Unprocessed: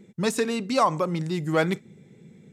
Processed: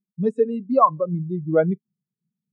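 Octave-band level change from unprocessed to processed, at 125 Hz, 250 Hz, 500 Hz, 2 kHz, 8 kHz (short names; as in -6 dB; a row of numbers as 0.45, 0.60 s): +2.0 dB, +2.5 dB, +5.0 dB, -9.0 dB, under -30 dB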